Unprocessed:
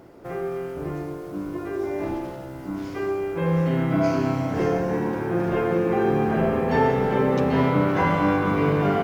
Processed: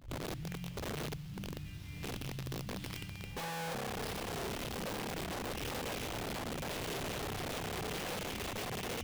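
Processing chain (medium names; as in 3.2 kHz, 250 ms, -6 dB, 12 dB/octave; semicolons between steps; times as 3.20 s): tape start-up on the opening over 0.47 s; elliptic band-stop 160–2900 Hz, stop band 50 dB; hum notches 50/100/150/200/250/300/350/400 Hz; compression 16:1, threshold -34 dBFS, peak gain reduction 12.5 dB; integer overflow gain 37 dB; pre-echo 119 ms -21 dB; sliding maximum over 5 samples; trim +2.5 dB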